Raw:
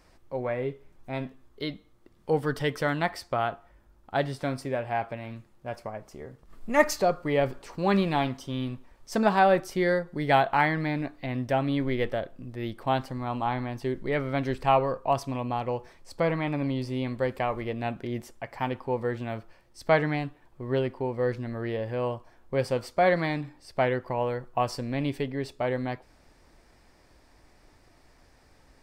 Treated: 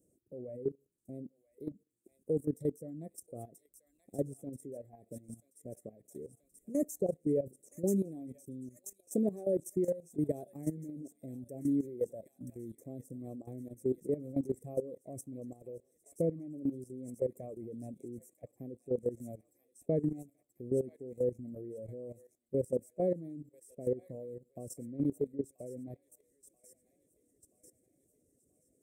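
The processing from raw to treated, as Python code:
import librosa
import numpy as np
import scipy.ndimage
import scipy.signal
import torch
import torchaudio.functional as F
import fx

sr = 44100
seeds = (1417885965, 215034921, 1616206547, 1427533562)

y = scipy.signal.sosfilt(scipy.signal.butter(2, 150.0, 'highpass', fs=sr, output='sos'), x)
y = fx.high_shelf(y, sr, hz=9900.0, db=-9.0)
y = fx.rev_fdn(y, sr, rt60_s=0.43, lf_ratio=0.85, hf_ratio=0.25, size_ms=20.0, drr_db=20.0)
y = fx.dereverb_blind(y, sr, rt60_s=1.2)
y = scipy.signal.sosfilt(scipy.signal.cheby2(4, 40, [860.0, 4800.0], 'bandstop', fs=sr, output='sos'), y)
y = fx.high_shelf(y, sr, hz=2300.0, db=8.5)
y = fx.echo_wet_highpass(y, sr, ms=982, feedback_pct=55, hz=2200.0, wet_db=-4.0)
y = fx.level_steps(y, sr, step_db=15)
y = F.gain(torch.from_numpy(y), 1.5).numpy()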